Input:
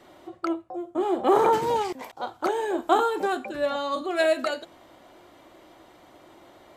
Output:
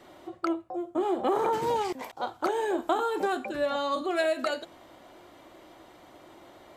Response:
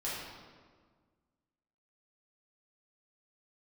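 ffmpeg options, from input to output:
-af "acompressor=threshold=-23dB:ratio=6"

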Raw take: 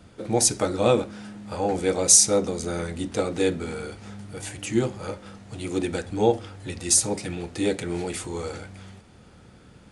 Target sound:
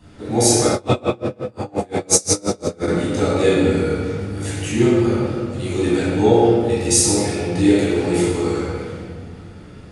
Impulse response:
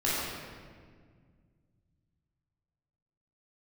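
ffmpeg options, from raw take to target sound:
-filter_complex "[1:a]atrim=start_sample=2205[a];[0:a][a]afir=irnorm=-1:irlink=0,asettb=1/sr,asplit=3[b][c][d];[b]atrim=end=0.744[e];[c]atrim=start=0.74:end=2.88,asetpts=PTS-STARTPTS,afade=t=in:d=0.004:c=qsin,afade=t=out:st=2.136:d=0.004:c=qsin,aeval=exprs='val(0)*pow(10,-31*(0.5-0.5*cos(2*PI*5.7*n/s))/20)':c=same[f];[d]atrim=start=2.876[g];[e][f]acrossfade=d=0.004:c1=hsin:c2=qsin[h];[h][g]acrossfade=d=0.004:c1=qsin:c2=hsin,volume=-2.5dB"

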